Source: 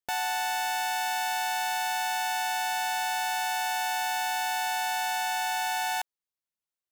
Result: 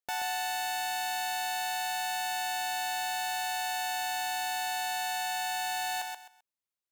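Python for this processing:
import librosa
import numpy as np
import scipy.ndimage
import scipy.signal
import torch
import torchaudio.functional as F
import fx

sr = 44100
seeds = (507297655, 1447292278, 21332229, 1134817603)

y = fx.low_shelf(x, sr, hz=180.0, db=-2.5)
y = fx.echo_feedback(y, sr, ms=130, feedback_pct=24, wet_db=-5.0)
y = F.gain(torch.from_numpy(y), -3.5).numpy()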